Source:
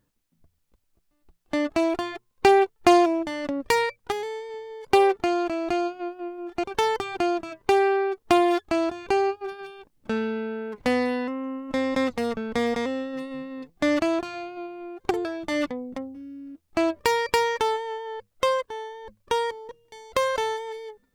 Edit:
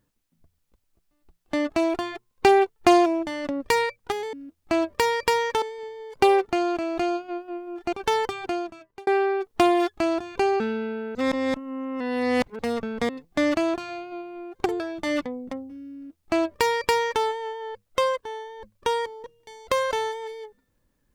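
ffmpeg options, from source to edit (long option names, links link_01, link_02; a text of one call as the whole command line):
ffmpeg -i in.wav -filter_complex "[0:a]asplit=8[link_01][link_02][link_03][link_04][link_05][link_06][link_07][link_08];[link_01]atrim=end=4.332[link_09];[link_02]atrim=start=16.388:end=17.682[link_10];[link_03]atrim=start=4.328:end=7.78,asetpts=PTS-STARTPTS,afade=type=out:start_time=2.632:duration=0.82[link_11];[link_04]atrim=start=7.78:end=9.312,asetpts=PTS-STARTPTS,afade=type=in:duration=0.004:curve=hsin[link_12];[link_05]atrim=start=10.138:end=10.692[link_13];[link_06]atrim=start=10.688:end=12.132,asetpts=PTS-STARTPTS,areverse[link_14];[link_07]atrim=start=12.128:end=12.632[link_15];[link_08]atrim=start=13.538[link_16];[link_09][link_10]acrossfade=duration=0.004:curve1=hsin:curve2=hsin[link_17];[link_11][link_12]concat=n=2:v=0:a=1[link_18];[link_17][link_18]acrossfade=duration=0.004:curve1=hsin:curve2=hsin[link_19];[link_19][link_13]acrossfade=duration=0.004:curve1=hsin:curve2=hsin[link_20];[link_20][link_14]acrossfade=duration=0.004:curve1=hsin:curve2=hsin[link_21];[link_21][link_15]acrossfade=duration=0.004:curve1=hsin:curve2=hsin[link_22];[link_22][link_16]acrossfade=duration=0.004:curve1=hsin:curve2=hsin" out.wav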